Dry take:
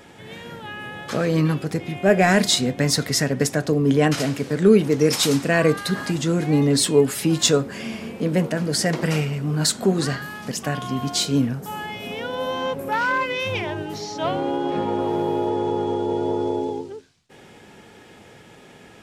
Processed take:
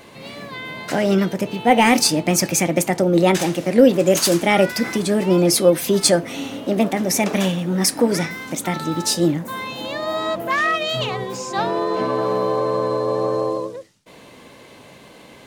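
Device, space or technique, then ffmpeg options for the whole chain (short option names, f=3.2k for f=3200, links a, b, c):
nightcore: -af "asetrate=54243,aresample=44100,volume=2.5dB"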